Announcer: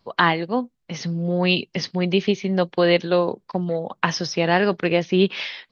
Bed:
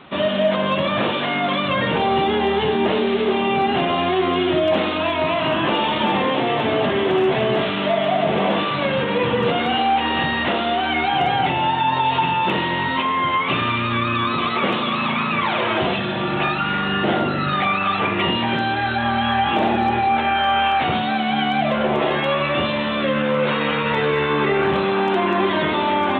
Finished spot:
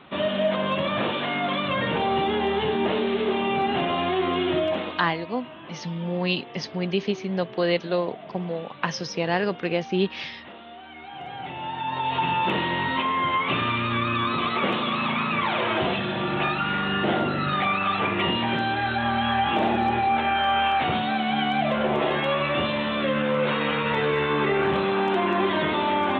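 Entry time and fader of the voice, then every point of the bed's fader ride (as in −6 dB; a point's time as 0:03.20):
4.80 s, −5.5 dB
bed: 0:04.61 −5 dB
0:05.36 −22.5 dB
0:10.95 −22.5 dB
0:12.31 −4 dB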